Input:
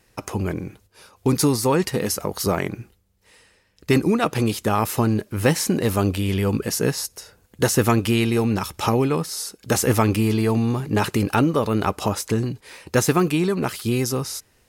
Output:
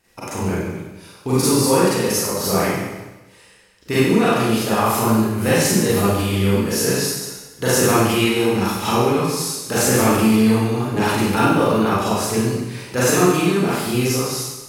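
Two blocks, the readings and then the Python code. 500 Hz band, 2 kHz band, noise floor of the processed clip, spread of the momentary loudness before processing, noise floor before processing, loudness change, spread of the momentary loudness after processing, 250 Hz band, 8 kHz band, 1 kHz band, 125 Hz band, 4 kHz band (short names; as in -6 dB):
+4.0 dB, +5.5 dB, -48 dBFS, 9 LU, -62 dBFS, +3.5 dB, 10 LU, +3.5 dB, +5.5 dB, +5.0 dB, +1.0 dB, +5.5 dB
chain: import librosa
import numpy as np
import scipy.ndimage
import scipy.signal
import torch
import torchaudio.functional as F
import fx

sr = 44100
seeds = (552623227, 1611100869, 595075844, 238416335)

y = fx.low_shelf(x, sr, hz=350.0, db=-3.5)
y = fx.rev_schroeder(y, sr, rt60_s=1.1, comb_ms=32, drr_db=-10.0)
y = y * 10.0 ** (-5.0 / 20.0)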